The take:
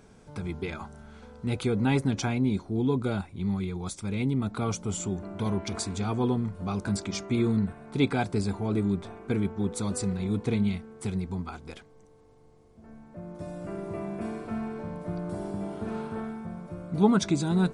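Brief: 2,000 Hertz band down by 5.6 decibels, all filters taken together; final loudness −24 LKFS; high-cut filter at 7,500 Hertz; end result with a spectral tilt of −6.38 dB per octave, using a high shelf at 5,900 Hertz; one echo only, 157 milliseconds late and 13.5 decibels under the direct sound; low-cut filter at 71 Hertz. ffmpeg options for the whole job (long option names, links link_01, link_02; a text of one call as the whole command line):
ffmpeg -i in.wav -af "highpass=71,lowpass=7500,equalizer=frequency=2000:width_type=o:gain=-7,highshelf=frequency=5900:gain=-6,aecho=1:1:157:0.211,volume=6dB" out.wav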